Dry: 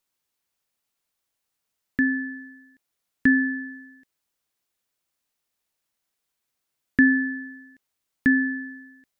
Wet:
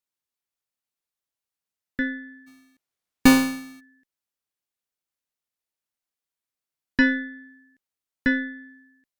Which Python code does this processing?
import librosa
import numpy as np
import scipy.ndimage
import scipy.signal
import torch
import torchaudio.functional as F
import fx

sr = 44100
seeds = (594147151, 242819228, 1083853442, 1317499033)

y = fx.halfwave_hold(x, sr, at=(2.46, 3.79), fade=0.02)
y = fx.cheby_harmonics(y, sr, harmonics=(4,), levels_db=(-14,), full_scale_db=-6.5)
y = fx.upward_expand(y, sr, threshold_db=-29.0, expansion=1.5)